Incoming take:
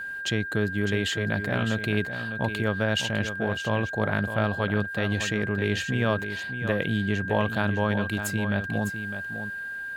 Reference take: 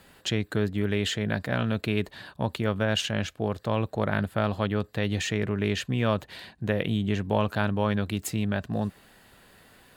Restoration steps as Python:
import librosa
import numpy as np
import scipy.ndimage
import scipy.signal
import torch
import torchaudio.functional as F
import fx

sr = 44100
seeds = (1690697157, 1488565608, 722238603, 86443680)

y = fx.notch(x, sr, hz=1600.0, q=30.0)
y = fx.fix_echo_inverse(y, sr, delay_ms=605, level_db=-9.5)